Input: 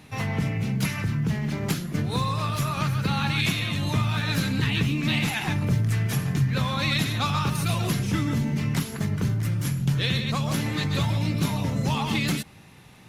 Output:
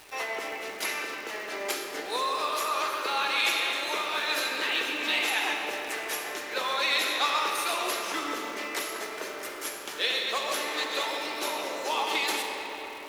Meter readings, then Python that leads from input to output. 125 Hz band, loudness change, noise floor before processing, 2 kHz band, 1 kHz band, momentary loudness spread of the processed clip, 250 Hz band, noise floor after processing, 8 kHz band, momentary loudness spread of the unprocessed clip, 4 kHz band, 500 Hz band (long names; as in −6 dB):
below −40 dB, −3.0 dB, −48 dBFS, +2.0 dB, +2.0 dB, 10 LU, −15.5 dB, −39 dBFS, +1.0 dB, 4 LU, +1.5 dB, +2.0 dB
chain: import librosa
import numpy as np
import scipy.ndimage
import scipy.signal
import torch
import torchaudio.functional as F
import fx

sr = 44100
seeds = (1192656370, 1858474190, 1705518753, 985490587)

y = scipy.signal.sosfilt(scipy.signal.butter(6, 370.0, 'highpass', fs=sr, output='sos'), x)
y = fx.rev_freeverb(y, sr, rt60_s=4.9, hf_ratio=0.55, predelay_ms=5, drr_db=2.0)
y = fx.dmg_crackle(y, sr, seeds[0], per_s=580.0, level_db=-39.0)